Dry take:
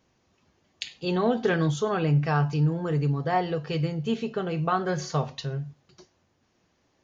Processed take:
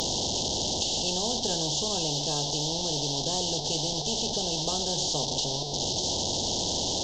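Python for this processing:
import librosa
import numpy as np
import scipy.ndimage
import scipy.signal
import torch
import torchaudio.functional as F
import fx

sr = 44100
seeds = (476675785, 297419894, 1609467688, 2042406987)

y = fx.delta_mod(x, sr, bps=32000, step_db=-30.0)
y = scipy.signal.sosfilt(scipy.signal.cheby2(4, 40, [1100.0, 2500.0], 'bandstop', fs=sr, output='sos'), y)
y = fx.spectral_comp(y, sr, ratio=4.0)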